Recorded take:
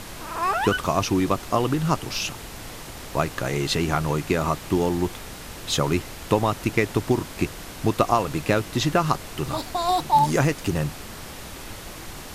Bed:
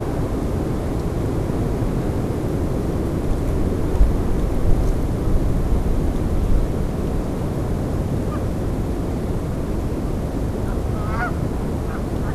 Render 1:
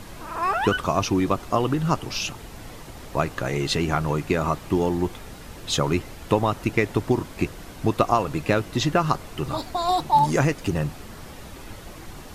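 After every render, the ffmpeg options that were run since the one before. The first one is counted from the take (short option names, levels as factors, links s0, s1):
-af "afftdn=nr=7:nf=-39"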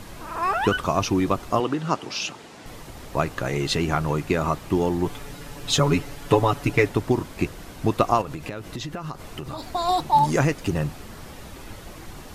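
-filter_complex "[0:a]asettb=1/sr,asplit=3[s0][s1][s2];[s0]atrim=end=1.604[s3];[s1]atrim=start=1.6:end=2.66,asetpts=PTS-STARTPTS,afade=t=in:d=0.004:c=qsin,afade=t=out:st=1.056:d=0.004:c=qsin,highpass=210,lowpass=7600[s4];[s2]atrim=start=2.656[s5];[s3][s4]acrossfade=d=0.004:c1=hsin:c2=qsin[s6];[s6][s5]acrossfade=d=0.004:c1=qsin:c2=hsin,asettb=1/sr,asplit=3[s7][s8][s9];[s7]atrim=end=5.054[s10];[s8]atrim=start=5.05:end=6.89,asetpts=PTS-STARTPTS,afade=t=in:d=0.004:c=qsin,afade=t=out:st=1.836:d=0.004:c=qsin,aecho=1:1:7:0.83,atrim=end_sample=81144[s11];[s9]atrim=start=6.886[s12];[s10][s11]acrossfade=d=0.004:c1=hsin:c2=qsin[s13];[s13][s12]acrossfade=d=0.004:c1=qsin:c2=hsin,asettb=1/sr,asplit=3[s14][s15][s16];[s14]atrim=end=8.214[s17];[s15]atrim=start=8.21:end=9.65,asetpts=PTS-STARTPTS,afade=t=in:d=0.004:c=qsin,afade=t=out:st=1.436:d=0.004:c=qsin,acompressor=threshold=0.0398:ratio=12:attack=3.2:release=140:knee=1:detection=peak[s18];[s16]atrim=start=9.646[s19];[s17][s18]acrossfade=d=0.004:c1=hsin:c2=qsin[s20];[s20][s19]acrossfade=d=0.004:c1=qsin:c2=hsin"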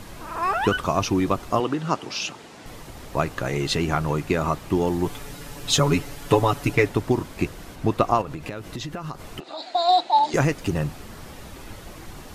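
-filter_complex "[0:a]asettb=1/sr,asplit=3[s0][s1][s2];[s0]atrim=end=4.874[s3];[s1]atrim=start=4.87:end=6.75,asetpts=PTS-STARTPTS,afade=t=in:d=0.004:c=qsin,afade=t=out:st=1.876:d=0.004:c=qsin,highshelf=f=5100:g=4[s4];[s2]atrim=start=6.746[s5];[s3][s4]acrossfade=d=0.004:c1=hsin:c2=qsin[s6];[s6][s5]acrossfade=d=0.004:c1=qsin:c2=hsin,asettb=1/sr,asplit=3[s7][s8][s9];[s7]atrim=end=7.754[s10];[s8]atrim=start=7.75:end=8.46,asetpts=PTS-STARTPTS,afade=t=in:d=0.004:c=qsin,afade=t=out:st=0.706:d=0.004:c=qsin,highshelf=f=4300:g=-5.5[s11];[s9]atrim=start=8.456[s12];[s10][s11]acrossfade=d=0.004:c1=hsin:c2=qsin[s13];[s13][s12]acrossfade=d=0.004:c1=qsin:c2=hsin,asettb=1/sr,asplit=3[s14][s15][s16];[s14]atrim=end=9.404[s17];[s15]atrim=start=9.4:end=10.34,asetpts=PTS-STARTPTS,afade=t=in:d=0.004:c=qsin,afade=t=out:st=0.936:d=0.004:c=qsin,highpass=f=340:w=0.5412,highpass=f=340:w=1.3066,equalizer=f=440:t=q:w=4:g=-9,equalizer=f=700:t=q:w=4:g=7,equalizer=f=1100:t=q:w=4:g=-8,equalizer=f=4000:t=q:w=4:g=9,equalizer=f=5800:t=q:w=4:g=-7,lowpass=f=6900:w=0.5412,lowpass=f=6900:w=1.3066[s18];[s16]atrim=start=10.336[s19];[s17][s18]acrossfade=d=0.004:c1=hsin:c2=qsin[s20];[s20][s19]acrossfade=d=0.004:c1=qsin:c2=hsin"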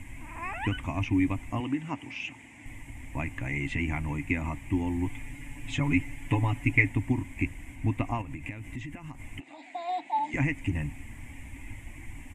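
-filter_complex "[0:a]acrossover=split=4800[s0][s1];[s1]acompressor=threshold=0.00398:ratio=4:attack=1:release=60[s2];[s0][s2]amix=inputs=2:normalize=0,firequalizer=gain_entry='entry(110,0);entry(180,-14);entry(270,1);entry(400,-22);entry(920,-9);entry(1300,-22);entry(2100,5);entry(4200,-28);entry(7700,-3);entry(15000,-17)':delay=0.05:min_phase=1"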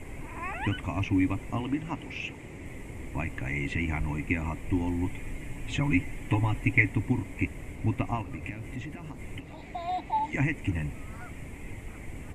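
-filter_complex "[1:a]volume=0.075[s0];[0:a][s0]amix=inputs=2:normalize=0"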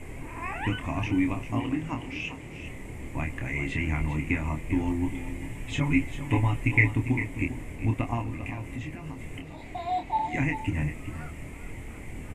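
-filter_complex "[0:a]asplit=2[s0][s1];[s1]adelay=26,volume=0.531[s2];[s0][s2]amix=inputs=2:normalize=0,aecho=1:1:398:0.282"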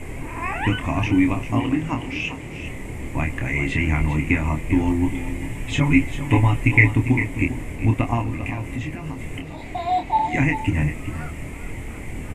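-af "volume=2.37,alimiter=limit=0.794:level=0:latency=1"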